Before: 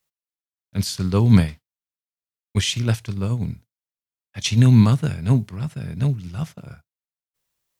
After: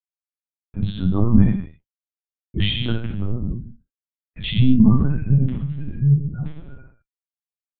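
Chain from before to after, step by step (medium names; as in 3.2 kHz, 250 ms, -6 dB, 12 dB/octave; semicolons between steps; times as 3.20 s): spectral gate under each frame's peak -25 dB strong; gate -40 dBFS, range -35 dB; gated-style reverb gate 280 ms falling, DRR -3.5 dB; LPC vocoder at 8 kHz pitch kept; trim -4 dB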